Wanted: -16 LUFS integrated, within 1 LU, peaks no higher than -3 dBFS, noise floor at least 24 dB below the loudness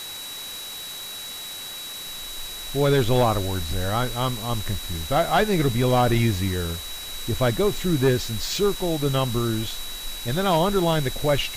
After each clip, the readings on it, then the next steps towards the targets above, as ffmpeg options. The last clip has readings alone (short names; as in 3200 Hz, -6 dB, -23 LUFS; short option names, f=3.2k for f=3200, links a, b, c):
steady tone 3900 Hz; tone level -35 dBFS; noise floor -35 dBFS; noise floor target -48 dBFS; loudness -24.0 LUFS; peak -10.5 dBFS; loudness target -16.0 LUFS
-> -af "bandreject=f=3.9k:w=30"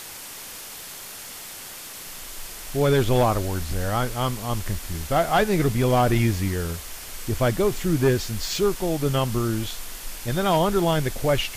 steady tone none; noise floor -39 dBFS; noise floor target -48 dBFS
-> -af "afftdn=nr=9:nf=-39"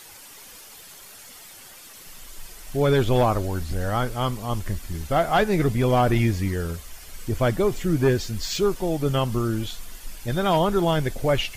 noise floor -45 dBFS; noise floor target -48 dBFS
-> -af "afftdn=nr=6:nf=-45"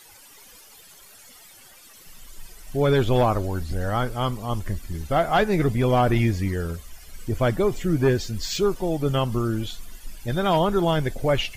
noise floor -49 dBFS; loudness -23.5 LUFS; peak -11.0 dBFS; loudness target -16.0 LUFS
-> -af "volume=7.5dB"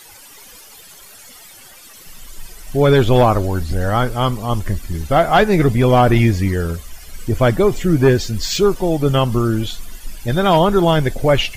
loudness -16.0 LUFS; peak -3.5 dBFS; noise floor -41 dBFS